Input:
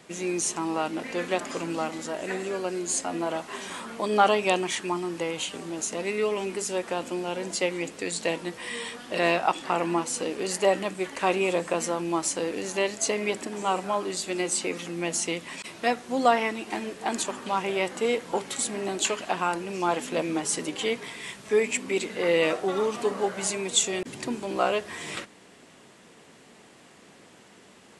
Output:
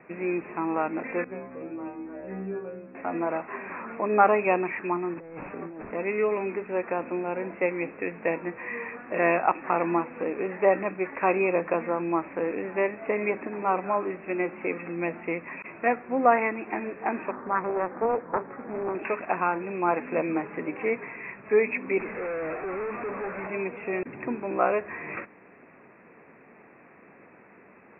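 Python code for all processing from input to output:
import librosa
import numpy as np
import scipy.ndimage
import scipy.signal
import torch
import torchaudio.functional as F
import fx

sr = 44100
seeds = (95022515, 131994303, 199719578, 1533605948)

y = fx.chain(x, sr, fx.lowpass(hz=1900.0, slope=6),
    fx.low_shelf(hz=400.0, db=11.5),
    fx.stiff_resonator(f0_hz=63.0, decay_s=0.76, stiffness=0.002), at=(1.24, 2.95))
y = fx.chain(y, sr, fx.delta_mod(bps=32000, step_db=-46.0),
    fx.over_compress(threshold_db=-39.0, ratio=-1.0),
    fx.peak_eq(hz=4500.0, db=-13.0, octaves=1.2), at=(5.14, 5.91))
y = fx.chain(y, sr, fx.cheby2_lowpass(hz=4000.0, order=4, stop_db=50),
    fx.doppler_dist(depth_ms=0.51), at=(17.31, 18.95))
y = fx.chain(y, sr, fx.delta_mod(bps=16000, step_db=-31.5),
    fx.clip_hard(threshold_db=-31.0), at=(21.99, 23.47))
y = scipy.signal.sosfilt(scipy.signal.cheby1(10, 1.0, 2600.0, 'lowpass', fs=sr, output='sos'), y)
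y = fx.low_shelf(y, sr, hz=180.0, db=-5.0)
y = F.gain(torch.from_numpy(y), 2.0).numpy()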